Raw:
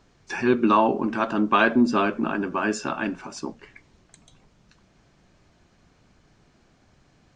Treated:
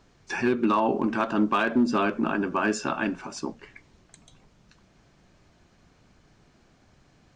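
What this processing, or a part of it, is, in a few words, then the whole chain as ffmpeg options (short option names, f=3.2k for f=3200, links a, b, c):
limiter into clipper: -af "alimiter=limit=-13dB:level=0:latency=1:release=161,asoftclip=type=hard:threshold=-14.5dB"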